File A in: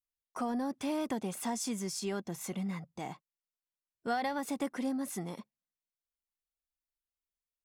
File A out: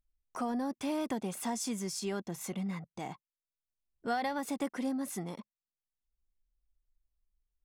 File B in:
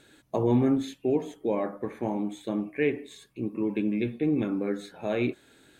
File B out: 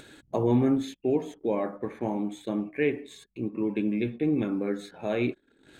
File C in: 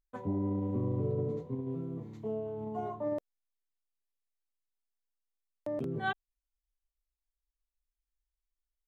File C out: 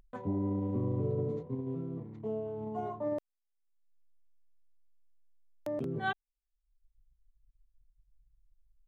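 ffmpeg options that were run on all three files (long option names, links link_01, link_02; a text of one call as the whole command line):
ffmpeg -i in.wav -af "acompressor=mode=upward:threshold=-43dB:ratio=2.5,anlmdn=0.000631" out.wav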